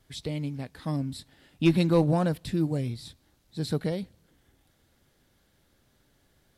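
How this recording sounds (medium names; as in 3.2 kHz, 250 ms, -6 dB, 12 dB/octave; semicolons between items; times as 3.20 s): noise floor -68 dBFS; spectral tilt -7.0 dB/octave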